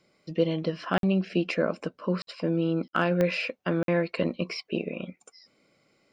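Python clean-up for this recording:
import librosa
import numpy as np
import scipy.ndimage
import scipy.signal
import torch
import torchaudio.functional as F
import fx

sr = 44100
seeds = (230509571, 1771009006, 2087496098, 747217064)

y = fx.fix_declip(x, sr, threshold_db=-12.5)
y = fx.fix_declick_ar(y, sr, threshold=10.0)
y = fx.fix_interpolate(y, sr, at_s=(0.98, 2.22, 2.88, 3.83), length_ms=52.0)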